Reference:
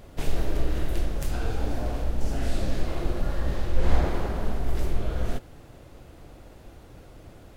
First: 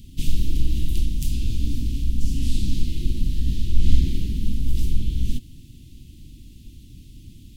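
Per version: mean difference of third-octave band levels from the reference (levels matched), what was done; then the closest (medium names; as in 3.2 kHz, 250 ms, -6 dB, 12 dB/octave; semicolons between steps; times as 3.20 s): 11.5 dB: elliptic band-stop 260–3000 Hz, stop band 70 dB; trim +5.5 dB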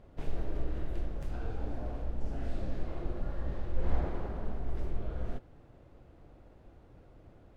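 5.0 dB: low-pass 1.4 kHz 6 dB/octave; trim -8.5 dB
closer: second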